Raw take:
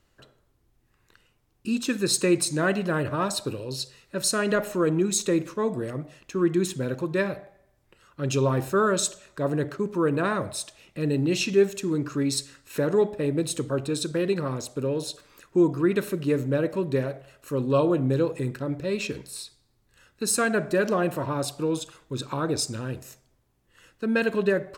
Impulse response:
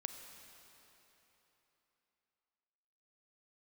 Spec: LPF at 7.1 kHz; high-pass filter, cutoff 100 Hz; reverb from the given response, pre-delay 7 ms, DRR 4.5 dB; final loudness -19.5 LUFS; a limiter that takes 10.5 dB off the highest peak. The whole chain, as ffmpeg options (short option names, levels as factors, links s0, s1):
-filter_complex "[0:a]highpass=100,lowpass=7100,alimiter=limit=0.0944:level=0:latency=1,asplit=2[s0][s1];[1:a]atrim=start_sample=2205,adelay=7[s2];[s1][s2]afir=irnorm=-1:irlink=0,volume=0.75[s3];[s0][s3]amix=inputs=2:normalize=0,volume=2.99"